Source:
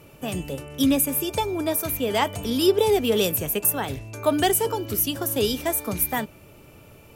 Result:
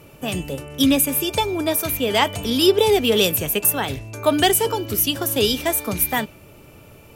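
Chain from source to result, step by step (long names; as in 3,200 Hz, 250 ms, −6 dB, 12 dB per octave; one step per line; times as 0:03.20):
dynamic equaliser 3,200 Hz, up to +5 dB, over −40 dBFS, Q 0.78
level +3 dB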